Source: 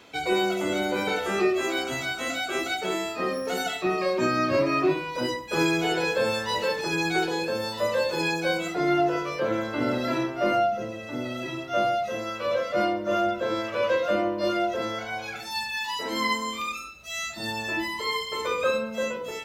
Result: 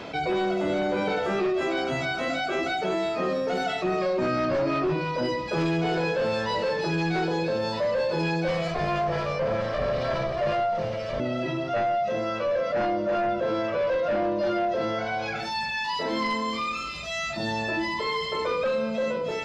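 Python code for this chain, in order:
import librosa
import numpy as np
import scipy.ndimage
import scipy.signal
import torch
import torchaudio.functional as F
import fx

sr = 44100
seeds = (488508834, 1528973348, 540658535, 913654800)

y = fx.lower_of_two(x, sr, delay_ms=1.7, at=(8.48, 11.2))
y = fx.graphic_eq_31(y, sr, hz=(160, 630, 5000), db=(8, 6, 7))
y = fx.fold_sine(y, sr, drive_db=5, ceiling_db=-11.5)
y = fx.spacing_loss(y, sr, db_at_10k=21)
y = fx.echo_wet_highpass(y, sr, ms=325, feedback_pct=52, hz=3800.0, wet_db=-7.0)
y = fx.env_flatten(y, sr, amount_pct=50)
y = y * 10.0 ** (-9.0 / 20.0)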